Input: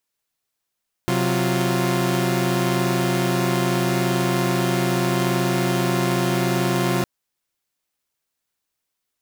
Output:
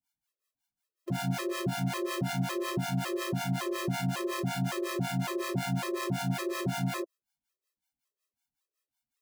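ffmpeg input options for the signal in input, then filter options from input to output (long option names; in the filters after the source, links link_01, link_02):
-f lavfi -i "aevalsrc='0.0944*((2*mod(130.81*t,1)-1)+(2*mod(185*t,1)-1)+(2*mod(349.23*t,1)-1))':duration=5.96:sample_rate=44100"
-filter_complex "[0:a]alimiter=limit=-16.5dB:level=0:latency=1,acrossover=split=590[link_01][link_02];[link_01]aeval=exprs='val(0)*(1-1/2+1/2*cos(2*PI*5.4*n/s))':channel_layout=same[link_03];[link_02]aeval=exprs='val(0)*(1-1/2-1/2*cos(2*PI*5.4*n/s))':channel_layout=same[link_04];[link_03][link_04]amix=inputs=2:normalize=0,afftfilt=real='re*gt(sin(2*PI*1.8*pts/sr)*(1-2*mod(floor(b*sr/1024/340),2)),0)':imag='im*gt(sin(2*PI*1.8*pts/sr)*(1-2*mod(floor(b*sr/1024/340),2)),0)':win_size=1024:overlap=0.75"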